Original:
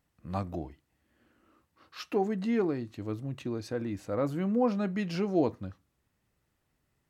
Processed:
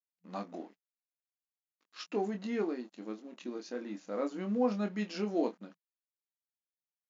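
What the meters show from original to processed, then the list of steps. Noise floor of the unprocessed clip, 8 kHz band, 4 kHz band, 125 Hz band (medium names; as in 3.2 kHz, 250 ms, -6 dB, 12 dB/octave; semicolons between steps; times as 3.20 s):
-78 dBFS, no reading, -2.0 dB, under -10 dB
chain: treble shelf 5.4 kHz +8 dB; doubling 24 ms -6 dB; crossover distortion -53 dBFS; FFT band-pass 180–7300 Hz; trim -5 dB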